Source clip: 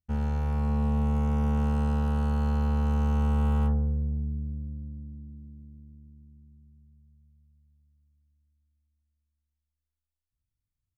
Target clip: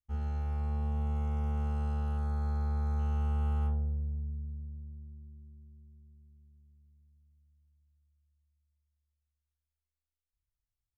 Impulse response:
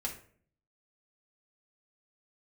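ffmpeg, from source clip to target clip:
-filter_complex "[0:a]asettb=1/sr,asplit=3[a][b][c];[a]atrim=end=2.174[d];[b]atrim=start=2.17:end=2.99,asetpts=PTS-STARTPTS,afade=t=in:d=0.004:c=qsin,afade=t=out:st=0.816:d=0.004:c=qsin,asuperstop=centerf=2900:order=8:qfactor=4.1[e];[c]atrim=start=2.986[f];[d][e]acrossfade=d=0.004:c1=hsin:c2=qsin[g];[g][f]acrossfade=d=0.004:c1=qsin:c2=hsin[h];[1:a]atrim=start_sample=2205,afade=t=out:st=0.21:d=0.01,atrim=end_sample=9702,asetrate=70560,aresample=44100[i];[h][i]afir=irnorm=-1:irlink=0,volume=-7dB"

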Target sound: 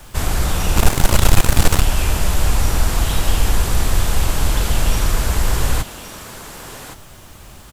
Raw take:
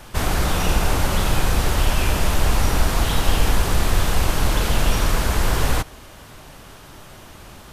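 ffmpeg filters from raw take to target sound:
-filter_complex "[0:a]equalizer=f=7.5k:w=5.6:g=4,acrossover=split=130[a][b];[a]acontrast=36[c];[b]aecho=1:1:1119:0.316[d];[c][d]amix=inputs=2:normalize=0,acrusher=bits=8:mix=0:aa=0.000001,highshelf=f=5.1k:g=5,asplit=3[e][f][g];[e]afade=t=out:st=0.76:d=0.02[h];[f]aeval=exprs='0.891*(cos(1*acos(clip(val(0)/0.891,-1,1)))-cos(1*PI/2))+0.316*(cos(6*acos(clip(val(0)/0.891,-1,1)))-cos(6*PI/2))':c=same,afade=t=in:st=0.76:d=0.02,afade=t=out:st=1.81:d=0.02[i];[g]afade=t=in:st=1.81:d=0.02[j];[h][i][j]amix=inputs=3:normalize=0,volume=-2dB"

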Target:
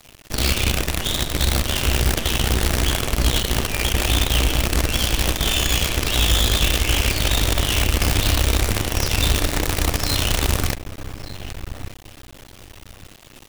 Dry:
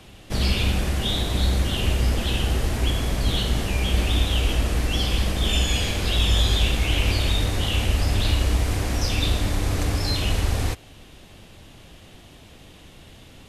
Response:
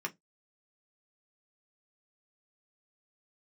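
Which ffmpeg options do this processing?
-filter_complex "[0:a]asplit=2[a][b];[b]adelay=1189,lowpass=f=2.7k:p=1,volume=-6.5dB,asplit=2[c][d];[d]adelay=1189,lowpass=f=2.7k:p=1,volume=0.25,asplit=2[e][f];[f]adelay=1189,lowpass=f=2.7k:p=1,volume=0.25[g];[a][c][e][g]amix=inputs=4:normalize=0,asplit=2[h][i];[1:a]atrim=start_sample=2205,highshelf=f=4k:g=11[j];[i][j]afir=irnorm=-1:irlink=0,volume=-12dB[k];[h][k]amix=inputs=2:normalize=0,acrusher=bits=4:dc=4:mix=0:aa=0.000001"

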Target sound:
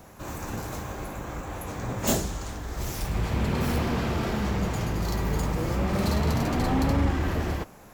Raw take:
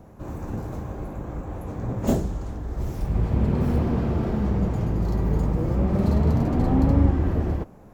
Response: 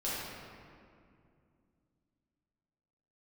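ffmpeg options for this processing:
-af "tiltshelf=f=1.1k:g=-9.5,asoftclip=type=tanh:threshold=-19.5dB,volume=5dB"

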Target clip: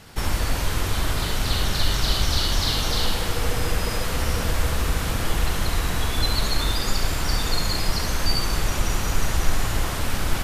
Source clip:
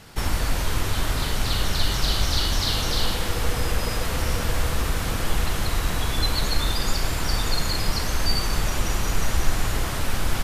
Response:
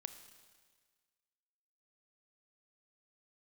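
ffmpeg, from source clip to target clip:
-filter_complex "[0:a]asplit=2[a][b];[1:a]atrim=start_sample=2205,adelay=70[c];[b][c]afir=irnorm=-1:irlink=0,volume=-4dB[d];[a][d]amix=inputs=2:normalize=0"

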